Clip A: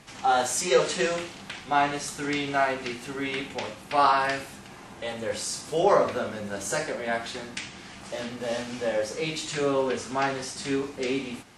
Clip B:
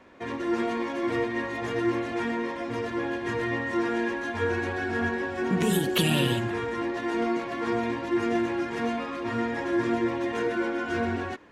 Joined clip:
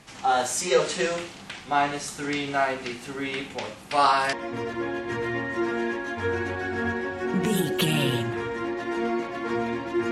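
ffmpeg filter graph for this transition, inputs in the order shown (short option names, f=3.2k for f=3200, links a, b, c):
-filter_complex "[0:a]asettb=1/sr,asplit=3[a][b][c];[a]atrim=end=3.914[d];[b]atrim=start=3.91:end=4.33,asetpts=PTS-STARTPTS,afade=t=in:d=0.004:c=qsin,afade=t=out:st=0.416:d=0.004:c=qsin,highshelf=f=4.2k:g=9[e];[c]atrim=start=4.326[f];[d][e]acrossfade=d=0.004:c1=hsin:c2=qsin[g];[g][f]acrossfade=d=0.004:c1=qsin:c2=hsin,apad=whole_dur=10.11,atrim=end=10.11,atrim=end=4.332[h];[1:a]atrim=start=2.498:end=8.28[i];[h][i]acrossfade=d=0.004:c1=hsin:c2=hsin"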